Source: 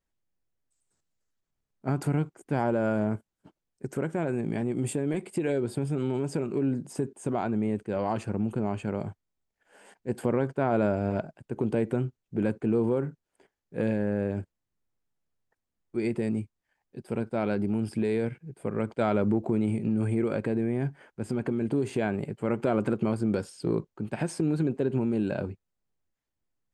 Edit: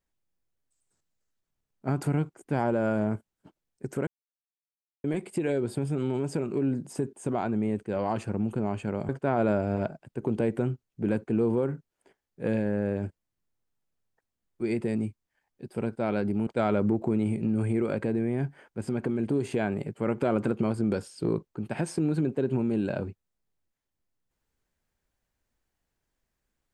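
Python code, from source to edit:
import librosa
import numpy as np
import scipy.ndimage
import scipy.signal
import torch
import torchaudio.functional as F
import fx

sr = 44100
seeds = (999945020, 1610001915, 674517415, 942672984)

y = fx.edit(x, sr, fx.silence(start_s=4.07, length_s=0.97),
    fx.cut(start_s=9.09, length_s=1.34),
    fx.cut(start_s=17.81, length_s=1.08), tone=tone)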